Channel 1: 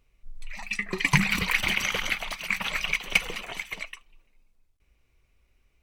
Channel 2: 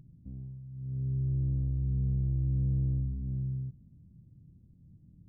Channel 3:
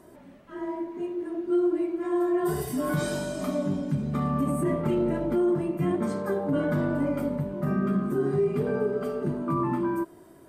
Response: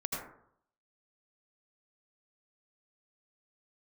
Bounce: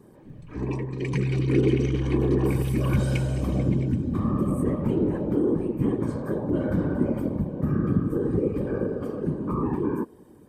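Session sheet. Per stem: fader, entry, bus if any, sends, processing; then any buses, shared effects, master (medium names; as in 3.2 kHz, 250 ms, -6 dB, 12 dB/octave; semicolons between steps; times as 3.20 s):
-14.5 dB, 0.00 s, no send, steep low-pass 10 kHz
+3.0 dB, 0.30 s, no send, compression, threshold -34 dBFS, peak gain reduction 8 dB
-4.5 dB, 0.00 s, no send, whisper effect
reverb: none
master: bass shelf 330 Hz +10.5 dB; comb of notches 680 Hz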